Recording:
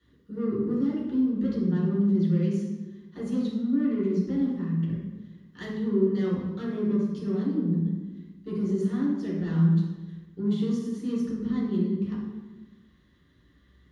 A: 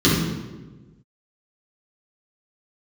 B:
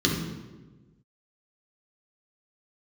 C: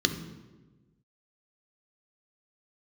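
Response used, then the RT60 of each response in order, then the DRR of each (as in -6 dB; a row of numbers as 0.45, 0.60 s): A; 1.2, 1.2, 1.2 s; -9.0, -2.0, 6.5 dB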